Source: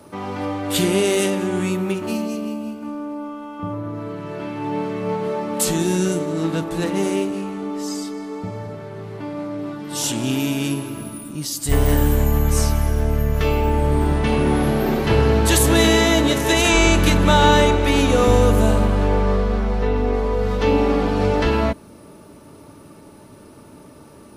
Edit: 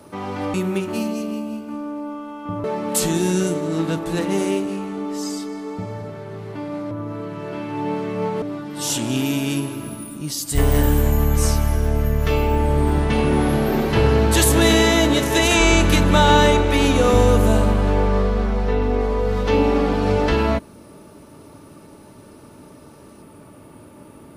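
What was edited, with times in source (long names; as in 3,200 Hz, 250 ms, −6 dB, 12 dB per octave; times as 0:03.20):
0:00.54–0:01.68: remove
0:03.78–0:05.29: move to 0:09.56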